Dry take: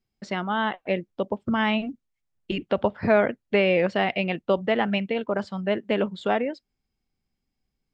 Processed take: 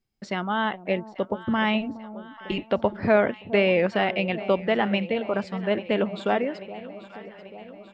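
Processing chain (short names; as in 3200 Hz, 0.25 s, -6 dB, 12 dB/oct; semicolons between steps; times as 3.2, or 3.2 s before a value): echo with dull and thin repeats by turns 0.419 s, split 800 Hz, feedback 77%, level -14 dB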